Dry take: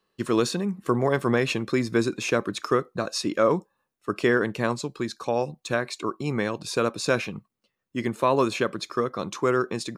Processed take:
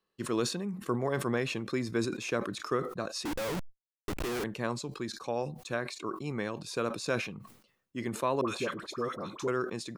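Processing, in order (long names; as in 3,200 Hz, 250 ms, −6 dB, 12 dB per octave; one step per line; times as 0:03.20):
0:03.25–0:04.44: comparator with hysteresis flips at −32.5 dBFS
0:08.41–0:09.48: all-pass dispersion highs, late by 70 ms, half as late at 1,000 Hz
level that may fall only so fast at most 85 dB per second
level −8.5 dB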